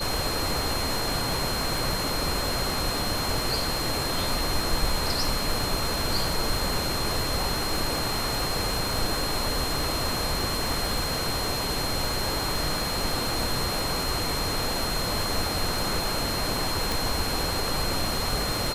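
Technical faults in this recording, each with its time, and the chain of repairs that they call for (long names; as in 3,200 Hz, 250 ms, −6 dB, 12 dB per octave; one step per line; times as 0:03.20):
surface crackle 29 per second −29 dBFS
whistle 4,200 Hz −31 dBFS
0:16.92: click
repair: click removal
notch filter 4,200 Hz, Q 30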